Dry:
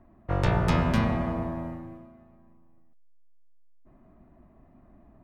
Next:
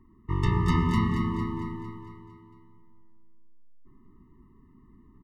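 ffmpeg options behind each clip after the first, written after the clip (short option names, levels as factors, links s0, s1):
-filter_complex "[0:a]asplit=2[s0][s1];[s1]aecho=0:1:227|454|681|908|1135|1362|1589:0.398|0.219|0.12|0.0662|0.0364|0.02|0.011[s2];[s0][s2]amix=inputs=2:normalize=0,afftfilt=real='re*eq(mod(floor(b*sr/1024/440),2),0)':imag='im*eq(mod(floor(b*sr/1024/440),2),0)':win_size=1024:overlap=0.75"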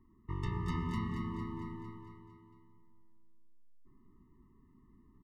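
-af "acompressor=threshold=0.0251:ratio=1.5,volume=0.422"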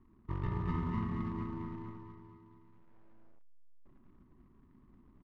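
-af "acrusher=bits=3:mode=log:mix=0:aa=0.000001,lowpass=1600,volume=1.12"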